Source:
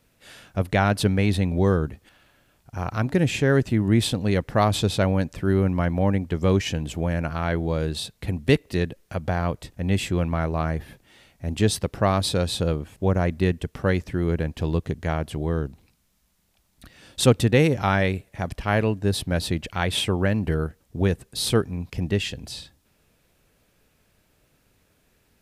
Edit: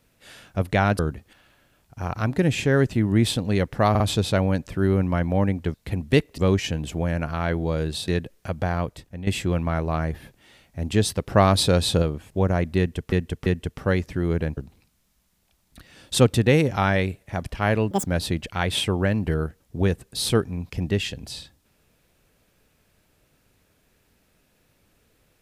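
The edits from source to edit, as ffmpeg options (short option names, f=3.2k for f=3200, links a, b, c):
-filter_complex "[0:a]asplit=15[a][b][c][d][e][f][g][h][i][j][k][l][m][n][o];[a]atrim=end=0.992[p];[b]atrim=start=1.748:end=4.712[q];[c]atrim=start=4.658:end=4.712[r];[d]atrim=start=4.658:end=6.402[s];[e]atrim=start=8.098:end=8.742[t];[f]atrim=start=6.398:end=8.102[u];[g]atrim=start=8.738:end=9.93,asetpts=PTS-STARTPTS,afade=t=out:st=0.522:d=0.67:c=qsin:silence=0.237137[v];[h]atrim=start=9.93:end=11.962,asetpts=PTS-STARTPTS,afade=t=in:d=0.004:c=hsin:silence=0.237137[w];[i]atrim=start=11.958:end=12.682,asetpts=PTS-STARTPTS,volume=4dB[x];[j]atrim=start=12.678:end=13.782[y];[k]atrim=start=13.438:end=13.782[z];[l]atrim=start=13.438:end=14.552[aa];[m]atrim=start=15.628:end=18.974[ab];[n]atrim=start=18.97:end=19.26,asetpts=PTS-STARTPTS,asetrate=86877,aresample=44100[ac];[o]atrim=start=19.256[ad];[p][q]acrossfade=d=0.004:c1=hsin:c2=hsin[ae];[ae][r]acrossfade=d=0.004:c1=hsin:c2=hsin[af];[af][s]acrossfade=d=0.004:c1=hsin:c2=hsin[ag];[ag][t]acrossfade=d=0.004:c1=hsin:c2=hsin[ah];[ah][u]acrossfade=d=0.004:c1=hsin:c2=hsin[ai];[v][w]concat=n=2:v=0:a=1[aj];[ai][aj]acrossfade=d=0.004:c1=hsin:c2=hsin[ak];[ak][x]acrossfade=d=0.004:c1=hsin:c2=hsin[al];[al][y]acrossfade=d=0.004:c1=hsin:c2=hsin[am];[am][z]acrossfade=d=0.004:c1=hsin:c2=hsin[an];[an][aa]acrossfade=d=0.004:c1=hsin:c2=hsin[ao];[ao][ab]acrossfade=d=0.004:c1=hsin:c2=hsin[ap];[ap][ac]acrossfade=d=0.004:c1=hsin:c2=hsin[aq];[aq][ad]acrossfade=d=0.004:c1=hsin:c2=hsin"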